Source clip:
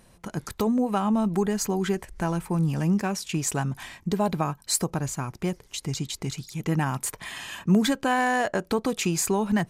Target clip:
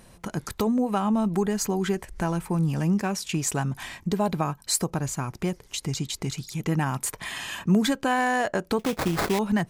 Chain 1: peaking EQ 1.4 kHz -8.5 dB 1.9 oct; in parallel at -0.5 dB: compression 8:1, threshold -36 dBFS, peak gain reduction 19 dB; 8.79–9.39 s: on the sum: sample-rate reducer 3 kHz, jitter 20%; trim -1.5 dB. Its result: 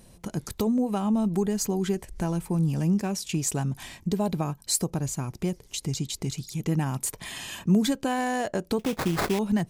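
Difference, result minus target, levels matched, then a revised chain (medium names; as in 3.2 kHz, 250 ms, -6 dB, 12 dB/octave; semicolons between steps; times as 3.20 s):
1 kHz band -3.5 dB
in parallel at -0.5 dB: compression 8:1, threshold -36 dBFS, peak gain reduction 19.5 dB; 8.79–9.39 s: on the sum: sample-rate reducer 3 kHz, jitter 20%; trim -1.5 dB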